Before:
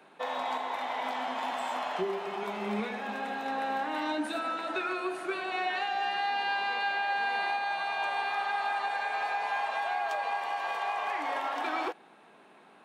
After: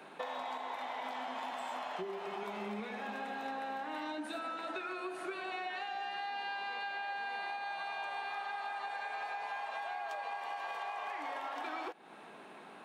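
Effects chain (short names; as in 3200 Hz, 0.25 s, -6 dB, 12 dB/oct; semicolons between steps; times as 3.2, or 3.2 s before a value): compressor, threshold -43 dBFS, peak gain reduction 15 dB; gain +4.5 dB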